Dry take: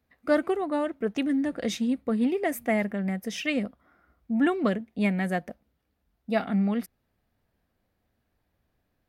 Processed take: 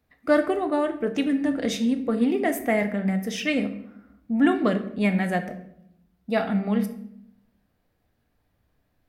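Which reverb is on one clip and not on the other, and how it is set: shoebox room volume 170 m³, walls mixed, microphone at 0.44 m; gain +2.5 dB

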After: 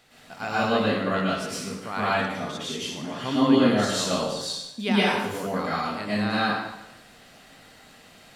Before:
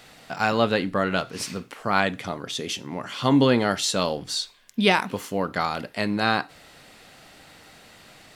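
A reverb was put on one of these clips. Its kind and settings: plate-style reverb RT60 0.94 s, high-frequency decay 0.85×, pre-delay 95 ms, DRR -8.5 dB; gain -10.5 dB

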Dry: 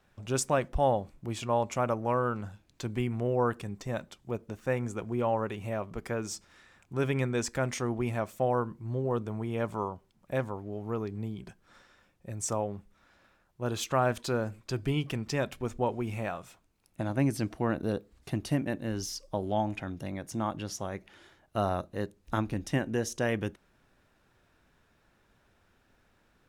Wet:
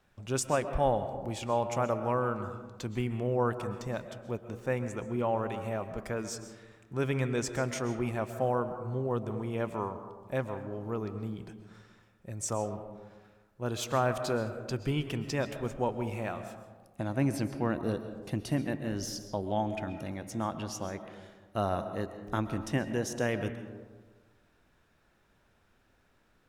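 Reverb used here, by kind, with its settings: digital reverb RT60 1.4 s, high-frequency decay 0.35×, pre-delay 90 ms, DRR 9.5 dB; gain -1.5 dB

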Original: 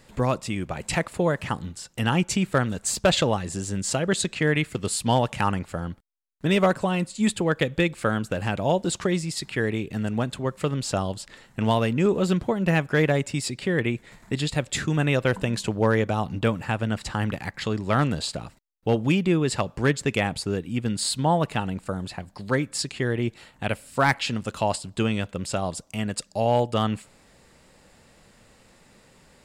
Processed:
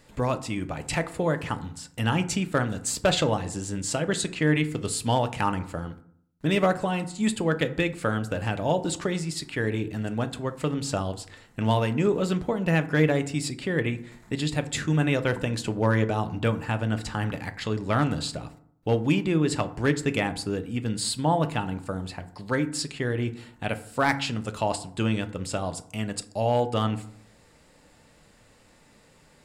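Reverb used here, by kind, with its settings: FDN reverb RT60 0.62 s, low-frequency decay 1.25×, high-frequency decay 0.45×, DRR 9 dB; gain -2.5 dB

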